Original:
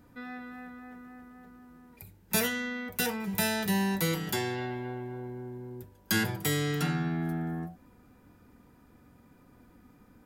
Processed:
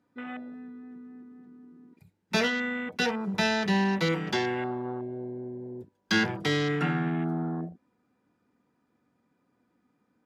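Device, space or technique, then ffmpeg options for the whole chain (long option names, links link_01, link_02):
over-cleaned archive recording: -af "highpass=170,lowpass=7000,afwtdn=0.00891,volume=4.5dB"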